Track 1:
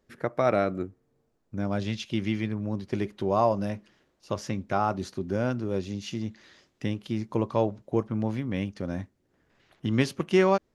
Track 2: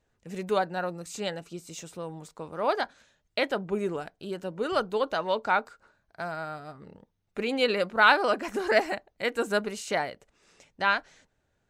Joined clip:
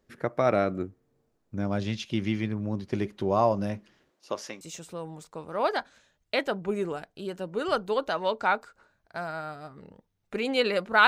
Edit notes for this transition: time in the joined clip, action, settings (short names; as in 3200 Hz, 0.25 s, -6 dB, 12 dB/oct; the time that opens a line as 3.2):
track 1
4.09–4.61 HPF 200 Hz -> 630 Hz
4.61 switch to track 2 from 1.65 s